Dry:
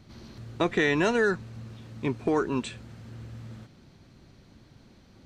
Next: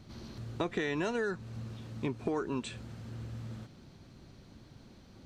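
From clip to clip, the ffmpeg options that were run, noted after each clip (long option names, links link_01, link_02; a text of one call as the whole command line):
ffmpeg -i in.wav -af "acompressor=threshold=-32dB:ratio=3,equalizer=frequency=2000:width_type=o:width=0.77:gain=-2.5" out.wav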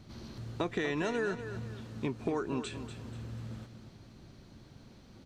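ffmpeg -i in.wav -af "aecho=1:1:242|484|726|968:0.299|0.107|0.0387|0.0139" out.wav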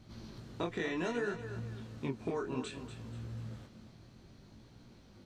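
ffmpeg -i in.wav -af "flanger=delay=17:depth=7.4:speed=0.62" out.wav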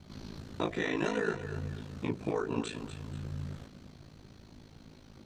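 ffmpeg -i in.wav -af "bandreject=frequency=74.36:width_type=h:width=4,bandreject=frequency=148.72:width_type=h:width=4,bandreject=frequency=223.08:width_type=h:width=4,bandreject=frequency=297.44:width_type=h:width=4,bandreject=frequency=371.8:width_type=h:width=4,bandreject=frequency=446.16:width_type=h:width=4,bandreject=frequency=520.52:width_type=h:width=4,bandreject=frequency=594.88:width_type=h:width=4,bandreject=frequency=669.24:width_type=h:width=4,bandreject=frequency=743.6:width_type=h:width=4,aeval=exprs='val(0)*sin(2*PI*27*n/s)':channel_layout=same,volume=7dB" out.wav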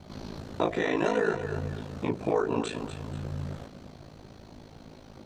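ffmpeg -i in.wav -filter_complex "[0:a]asplit=2[link_01][link_02];[link_02]alimiter=level_in=2.5dB:limit=-24dB:level=0:latency=1,volume=-2.5dB,volume=-1.5dB[link_03];[link_01][link_03]amix=inputs=2:normalize=0,equalizer=frequency=660:width_type=o:width=1.5:gain=8,volume=-2dB" out.wav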